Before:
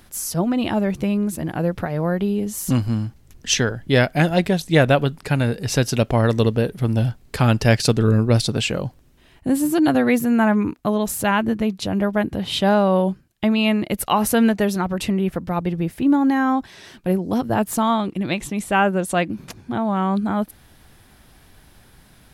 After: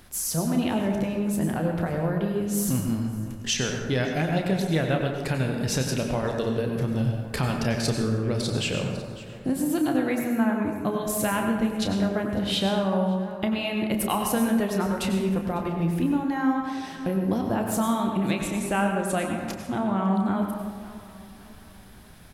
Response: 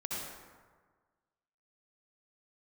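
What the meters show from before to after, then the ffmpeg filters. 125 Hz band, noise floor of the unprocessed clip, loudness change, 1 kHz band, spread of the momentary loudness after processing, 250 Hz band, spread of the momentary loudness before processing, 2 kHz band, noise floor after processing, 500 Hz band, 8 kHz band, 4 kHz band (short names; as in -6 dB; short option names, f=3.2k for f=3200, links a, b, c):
-6.5 dB, -52 dBFS, -5.5 dB, -6.5 dB, 5 LU, -5.0 dB, 8 LU, -7.0 dB, -45 dBFS, -6.0 dB, -3.5 dB, -5.0 dB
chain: -filter_complex "[0:a]asplit=2[a][b];[b]aecho=0:1:551|1102|1653:0.075|0.0322|0.0139[c];[a][c]amix=inputs=2:normalize=0,acompressor=threshold=-23dB:ratio=4,asplit=2[d][e];[1:a]atrim=start_sample=2205,asetrate=48510,aresample=44100,adelay=31[f];[e][f]afir=irnorm=-1:irlink=0,volume=-4dB[g];[d][g]amix=inputs=2:normalize=0,volume=-1.5dB"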